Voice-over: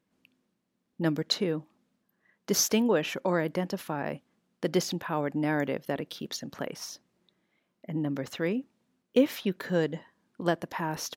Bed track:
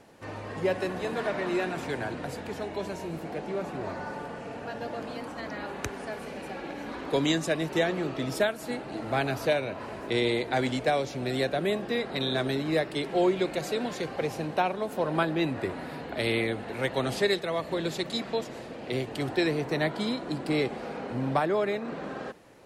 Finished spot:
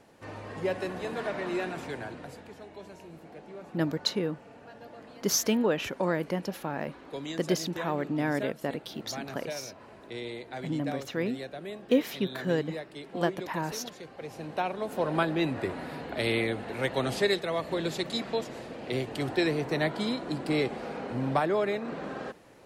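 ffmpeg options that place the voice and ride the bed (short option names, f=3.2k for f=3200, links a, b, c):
-filter_complex "[0:a]adelay=2750,volume=-1dB[a];[1:a]volume=8.5dB,afade=t=out:st=1.67:d=0.89:silence=0.354813,afade=t=in:st=14.19:d=0.81:silence=0.266073[b];[a][b]amix=inputs=2:normalize=0"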